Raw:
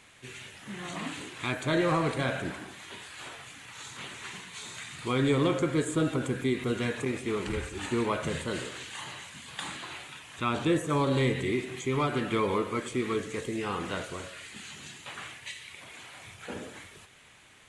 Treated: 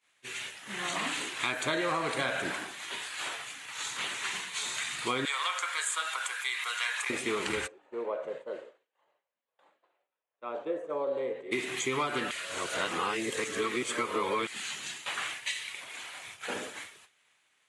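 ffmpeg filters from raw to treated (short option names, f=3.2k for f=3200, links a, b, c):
-filter_complex "[0:a]asettb=1/sr,asplit=3[a][b][c];[a]atrim=end=5.254[d];[b]atrim=start=5.25:end=7.1,asetpts=PTS-STARTPTS,afade=t=in:d=0.004:c=qsin,afade=t=out:st=1.846:d=0.004:c=qsin,highpass=f=930:w=0.5412,highpass=f=930:w=1.3066[e];[c]atrim=start=7.096[f];[d][e]acrossfade=d=0.004:c1=hsin:c2=qsin[g];[g][f]acrossfade=d=0.004:c1=qsin:c2=hsin,asplit=3[h][i][j];[h]afade=t=out:st=7.66:d=0.02[k];[i]bandpass=f=540:t=q:w=3.6,afade=t=in:st=7.66:d=0.02,afade=t=out:st=11.51:d=0.02[l];[j]afade=t=in:st=11.51:d=0.02[m];[k][l][m]amix=inputs=3:normalize=0,asplit=3[n][o][p];[n]atrim=end=12.312[q];[o]atrim=start=12.308:end=14.472,asetpts=PTS-STARTPTS,areverse[r];[p]atrim=start=14.468[s];[q][r]acrossfade=d=0.004:c1=hsin:c2=hsin[t];[t][s]acrossfade=d=0.004:c1=hsin:c2=hsin,highpass=f=790:p=1,agate=range=-33dB:threshold=-44dB:ratio=3:detection=peak,acompressor=threshold=-35dB:ratio=6,volume=8dB"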